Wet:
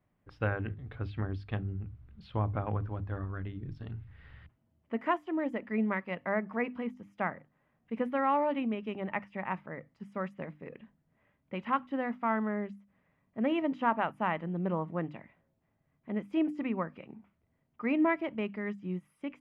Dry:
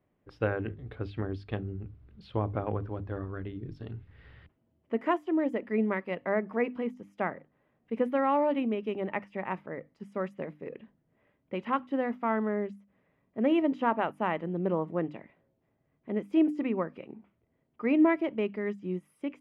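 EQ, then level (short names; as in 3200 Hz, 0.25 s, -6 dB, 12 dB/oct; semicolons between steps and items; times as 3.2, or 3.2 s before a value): bell 400 Hz -10 dB 1.5 oct; high shelf 3200 Hz -8.5 dB; notches 60/120 Hz; +3.0 dB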